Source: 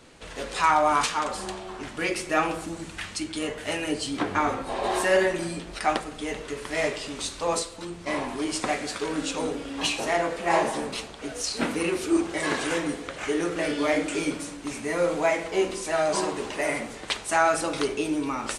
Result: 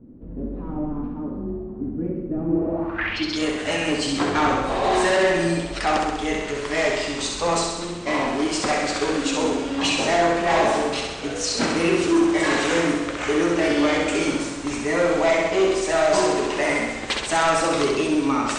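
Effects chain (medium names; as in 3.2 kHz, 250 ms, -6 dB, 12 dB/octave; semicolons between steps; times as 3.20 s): overload inside the chain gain 22 dB; distance through air 100 m; on a send: flutter echo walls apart 11.2 m, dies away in 1 s; on the sum: low-pass sweep 250 Hz -> 8.1 kHz, 2.48–3.45 s; trim +5.5 dB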